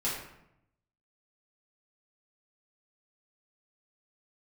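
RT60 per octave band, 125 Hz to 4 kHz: 1.2, 0.95, 0.80, 0.75, 0.70, 0.55 seconds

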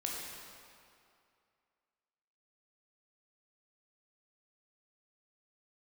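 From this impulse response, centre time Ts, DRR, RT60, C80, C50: 120 ms, −3.0 dB, 2.4 s, 1.0 dB, −0.5 dB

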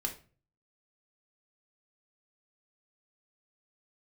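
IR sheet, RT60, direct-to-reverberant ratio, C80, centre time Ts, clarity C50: 0.40 s, 2.0 dB, 17.5 dB, 14 ms, 11.5 dB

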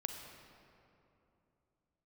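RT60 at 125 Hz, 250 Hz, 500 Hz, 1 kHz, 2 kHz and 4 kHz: 3.7, 3.5, 3.0, 2.7, 2.1, 1.6 seconds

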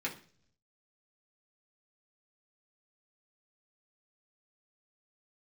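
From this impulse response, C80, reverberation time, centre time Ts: 17.0 dB, 0.50 s, 14 ms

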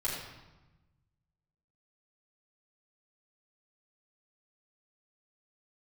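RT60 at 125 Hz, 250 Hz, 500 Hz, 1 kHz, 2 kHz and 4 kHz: 1.9, 1.5, 1.1, 1.1, 0.95, 0.85 seconds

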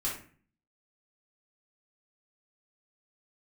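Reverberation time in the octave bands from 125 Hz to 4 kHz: 0.70, 0.65, 0.45, 0.40, 0.45, 0.30 seconds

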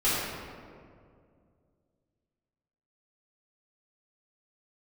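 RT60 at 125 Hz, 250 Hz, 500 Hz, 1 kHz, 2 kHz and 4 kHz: 3.0, 2.7, 2.5, 1.9, 1.5, 1.1 seconds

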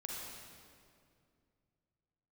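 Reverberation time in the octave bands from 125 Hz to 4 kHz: 3.3, 2.9, 2.5, 2.1, 1.9, 1.7 seconds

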